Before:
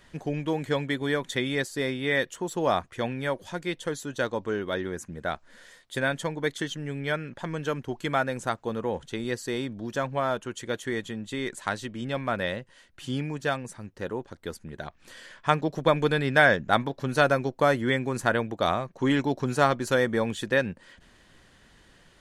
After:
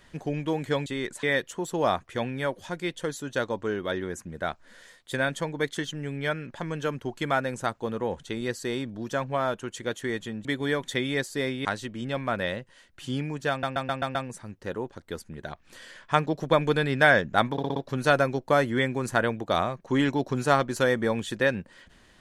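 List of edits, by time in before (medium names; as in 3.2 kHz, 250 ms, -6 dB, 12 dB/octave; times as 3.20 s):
0.86–2.06 s: swap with 11.28–11.65 s
13.50 s: stutter 0.13 s, 6 plays
16.87 s: stutter 0.06 s, 5 plays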